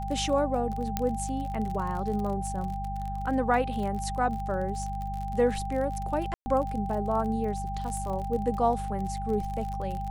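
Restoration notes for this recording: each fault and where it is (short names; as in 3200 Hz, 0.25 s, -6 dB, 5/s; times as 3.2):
crackle 36/s -33 dBFS
hum 50 Hz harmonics 4 -35 dBFS
tone 790 Hz -34 dBFS
0.97 pop -12 dBFS
6.34–6.46 gap 0.12 s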